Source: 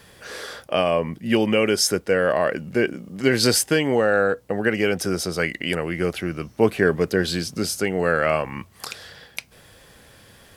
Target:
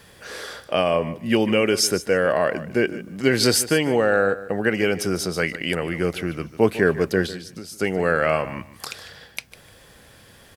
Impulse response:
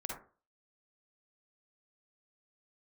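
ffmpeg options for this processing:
-filter_complex "[0:a]asettb=1/sr,asplit=3[link_01][link_02][link_03];[link_01]atrim=end=7.264[link_04];[link_02]atrim=start=7.26:end=7.8,asetpts=PTS-STARTPTS,afade=type=in:duration=0.004:curve=qsin,afade=type=out:start_time=0.536:duration=0.004:curve=qsin,acompressor=threshold=-33dB:ratio=10[link_05];[link_03]atrim=start=7.796[link_06];[link_04][link_05]acrossfade=duration=0.004:curve1=hsin:curve2=qsin[link_07];[link_07][link_06]acrossfade=duration=0.004:curve1=qsin:curve2=hsin,aecho=1:1:150|300:0.168|0.0302"

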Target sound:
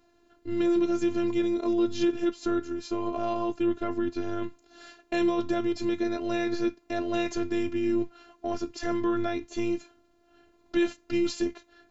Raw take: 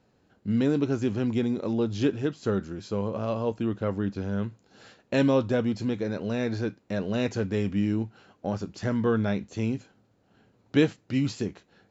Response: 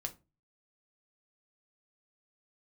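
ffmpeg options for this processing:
-af "alimiter=limit=-19.5dB:level=0:latency=1:release=12,afftfilt=real='hypot(re,im)*cos(PI*b)':imag='0':win_size=512:overlap=0.75,volume=6.5dB"

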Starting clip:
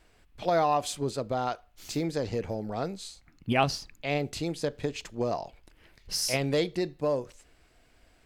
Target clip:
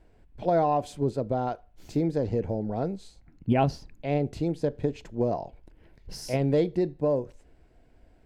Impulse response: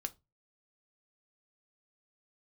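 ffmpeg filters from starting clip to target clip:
-af "tiltshelf=frequency=1300:gain=9,bandreject=frequency=1200:width=6.8,volume=-3.5dB"

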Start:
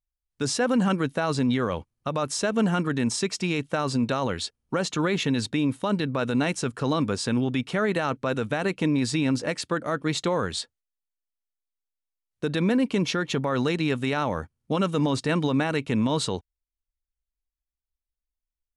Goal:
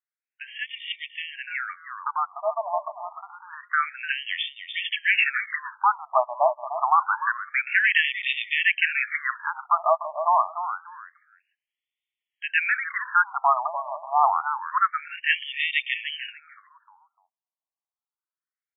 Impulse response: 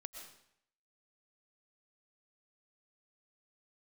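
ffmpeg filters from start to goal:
-filter_complex "[0:a]highshelf=frequency=4400:gain=11.5,dynaudnorm=framelen=240:gausssize=31:maxgain=10dB,asplit=2[link_01][link_02];[link_02]aecho=0:1:298|596|894:0.316|0.0696|0.0153[link_03];[link_01][link_03]amix=inputs=2:normalize=0,afftfilt=real='re*between(b*sr/1024,830*pow(2600/830,0.5+0.5*sin(2*PI*0.27*pts/sr))/1.41,830*pow(2600/830,0.5+0.5*sin(2*PI*0.27*pts/sr))*1.41)':imag='im*between(b*sr/1024,830*pow(2600/830,0.5+0.5*sin(2*PI*0.27*pts/sr))/1.41,830*pow(2600/830,0.5+0.5*sin(2*PI*0.27*pts/sr))*1.41)':win_size=1024:overlap=0.75,volume=4.5dB"

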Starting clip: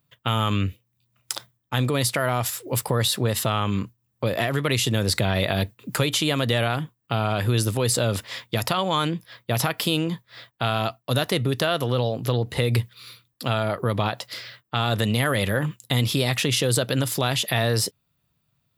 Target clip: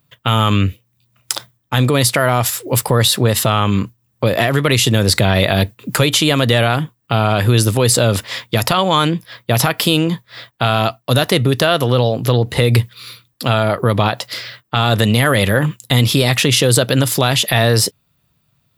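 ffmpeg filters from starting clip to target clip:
ffmpeg -i in.wav -af "apsyclip=10.5dB,volume=-1.5dB" out.wav

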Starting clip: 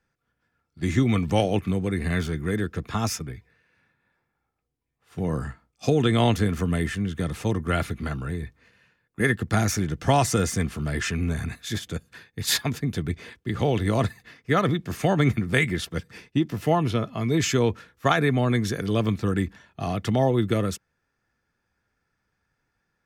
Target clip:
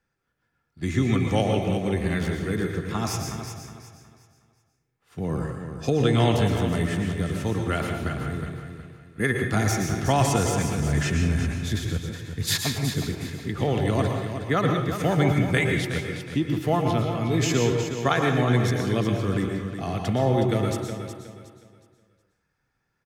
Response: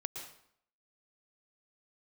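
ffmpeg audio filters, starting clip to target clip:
-filter_complex "[0:a]asettb=1/sr,asplit=3[link_01][link_02][link_03];[link_01]atrim=end=10.804[link_04];[link_02]atrim=start=10.8:end=12.57,asetpts=PTS-STARTPTS,afade=type=in:duration=0.004:curve=qsin,afade=type=out:start_time=1.766:duration=0.004:curve=qsin,lowshelf=frequency=180:gain=7.5[link_05];[link_03]atrim=start=12.566[link_06];[link_04][link_05]acrossfade=duration=0.004:curve1=hsin:curve2=qsin[link_07];[link_07][link_06]acrossfade=duration=0.004:curve1=qsin:curve2=hsin,aecho=1:1:366|732|1098|1464:0.355|0.11|0.0341|0.0106[link_08];[1:a]atrim=start_sample=2205[link_09];[link_08][link_09]afir=irnorm=-1:irlink=0"

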